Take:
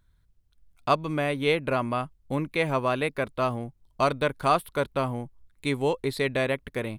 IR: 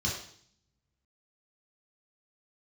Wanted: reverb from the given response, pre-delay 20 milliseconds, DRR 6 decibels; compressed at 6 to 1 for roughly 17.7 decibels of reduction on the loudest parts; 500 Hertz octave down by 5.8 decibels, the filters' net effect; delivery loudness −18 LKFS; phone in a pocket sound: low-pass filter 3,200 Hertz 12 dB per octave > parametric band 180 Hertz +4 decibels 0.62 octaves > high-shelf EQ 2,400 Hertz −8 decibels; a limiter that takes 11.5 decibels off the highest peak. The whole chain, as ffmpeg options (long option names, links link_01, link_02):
-filter_complex "[0:a]equalizer=frequency=500:width_type=o:gain=-7,acompressor=threshold=-39dB:ratio=6,alimiter=level_in=12.5dB:limit=-24dB:level=0:latency=1,volume=-12.5dB,asplit=2[link_01][link_02];[1:a]atrim=start_sample=2205,adelay=20[link_03];[link_02][link_03]afir=irnorm=-1:irlink=0,volume=-12dB[link_04];[link_01][link_04]amix=inputs=2:normalize=0,lowpass=3200,equalizer=frequency=180:width_type=o:width=0.62:gain=4,highshelf=frequency=2400:gain=-8,volume=27dB"